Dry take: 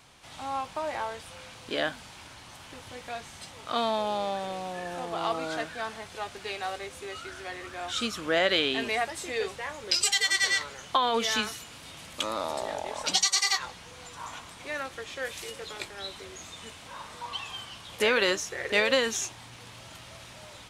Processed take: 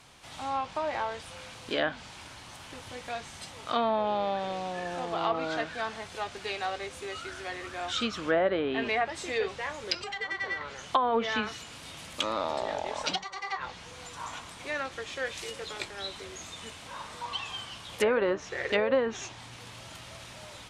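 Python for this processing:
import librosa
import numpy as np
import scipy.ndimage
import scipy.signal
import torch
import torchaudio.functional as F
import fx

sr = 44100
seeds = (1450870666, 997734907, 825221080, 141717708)

y = fx.env_lowpass_down(x, sr, base_hz=1100.0, full_db=-21.0)
y = y * 10.0 ** (1.0 / 20.0)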